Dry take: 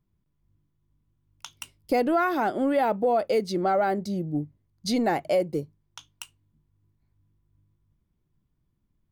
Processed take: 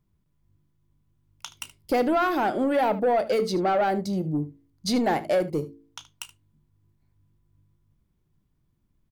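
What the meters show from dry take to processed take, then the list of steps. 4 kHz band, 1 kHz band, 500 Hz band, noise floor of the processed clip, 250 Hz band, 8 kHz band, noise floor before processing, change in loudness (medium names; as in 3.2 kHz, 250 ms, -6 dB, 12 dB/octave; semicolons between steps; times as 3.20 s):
+2.5 dB, +1.0 dB, +0.5 dB, -71 dBFS, +1.0 dB, +2.5 dB, -74 dBFS, +1.0 dB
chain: de-hum 55.9 Hz, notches 8; saturation -19.5 dBFS, distortion -17 dB; early reflections 32 ms -17 dB, 75 ms -17 dB; trim +3 dB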